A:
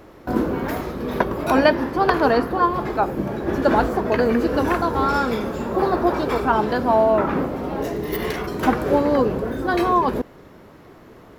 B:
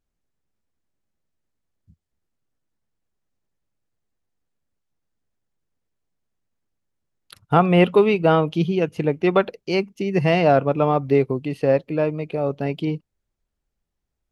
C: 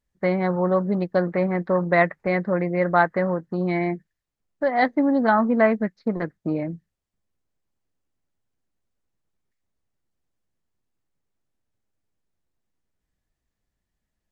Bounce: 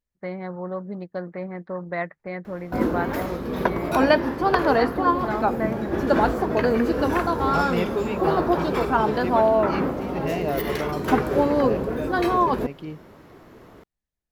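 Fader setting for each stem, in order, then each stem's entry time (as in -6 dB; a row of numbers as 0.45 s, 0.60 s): -2.0 dB, -11.5 dB, -10.0 dB; 2.45 s, 0.00 s, 0.00 s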